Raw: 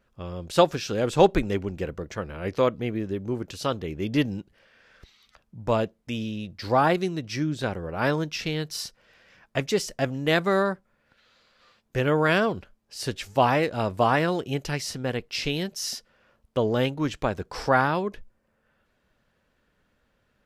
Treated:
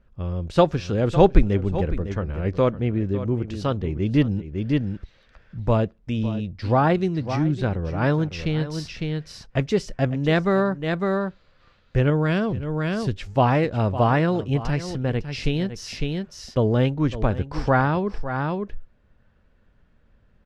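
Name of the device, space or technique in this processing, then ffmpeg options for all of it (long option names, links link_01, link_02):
ducked delay: -filter_complex "[0:a]lowpass=12000,aemphasis=mode=reproduction:type=bsi,asplit=3[link_01][link_02][link_03];[link_02]adelay=555,volume=-3dB[link_04];[link_03]apad=whole_len=926701[link_05];[link_04][link_05]sidechaincompress=threshold=-36dB:ratio=4:attack=40:release=193[link_06];[link_01][link_06]amix=inputs=2:normalize=0,asettb=1/sr,asplit=3[link_07][link_08][link_09];[link_07]atrim=end=12.104[link_10];[link_08]atrim=start=12.1:end=13.17,asetpts=PTS-STARTPTS,afade=type=in:duration=0.004:curve=qsin,afade=type=out:start_time=1.066:duration=0.004:curve=qsin,equalizer=frequency=1000:width=0.4:gain=-6[link_11];[link_09]atrim=start=13.166[link_12];[link_10][link_11]acrossfade=duration=0.004:curve1=hsin:curve2=qsin[link_13];[link_13][link_12]acrossfade=duration=0.004:curve1=qsin:curve2=hsin"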